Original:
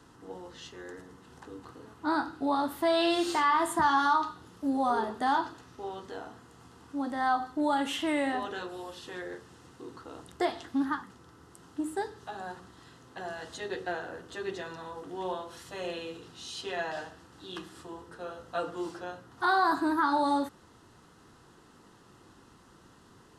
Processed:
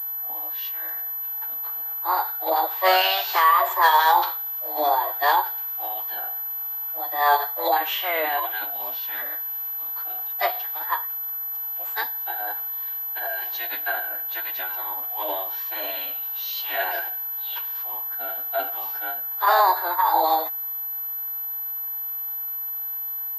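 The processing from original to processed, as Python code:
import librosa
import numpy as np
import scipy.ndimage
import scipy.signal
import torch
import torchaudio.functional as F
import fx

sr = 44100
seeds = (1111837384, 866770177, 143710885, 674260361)

y = scipy.signal.sosfilt(scipy.signal.butter(12, 570.0, 'highpass', fs=sr, output='sos'), x)
y = fx.pitch_keep_formants(y, sr, semitones=-10.0)
y = fx.pwm(y, sr, carrier_hz=12000.0)
y = F.gain(torch.from_numpy(y), 9.0).numpy()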